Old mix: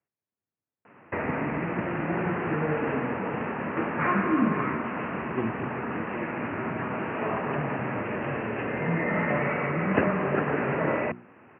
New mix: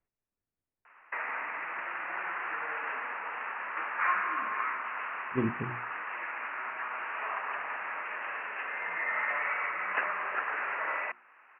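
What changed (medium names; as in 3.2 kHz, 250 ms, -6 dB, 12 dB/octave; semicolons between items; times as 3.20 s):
background: add Butterworth band-pass 1.7 kHz, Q 0.91; master: remove high-pass 95 Hz 24 dB/octave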